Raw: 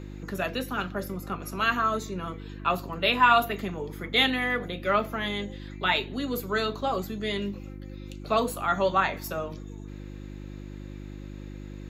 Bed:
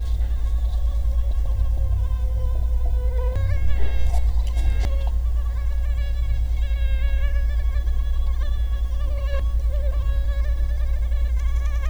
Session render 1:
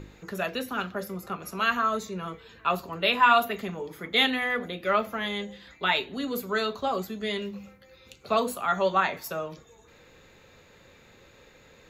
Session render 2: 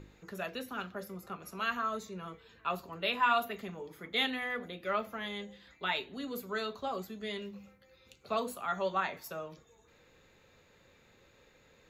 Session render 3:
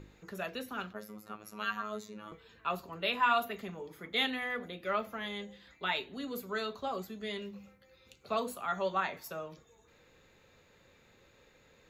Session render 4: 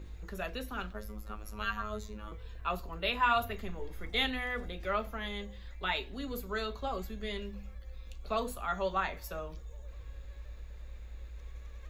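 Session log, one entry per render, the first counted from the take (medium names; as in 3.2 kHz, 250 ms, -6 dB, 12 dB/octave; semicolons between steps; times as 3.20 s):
de-hum 50 Hz, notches 7
trim -8.5 dB
0.93–2.32 s: robot voice 106 Hz
add bed -24 dB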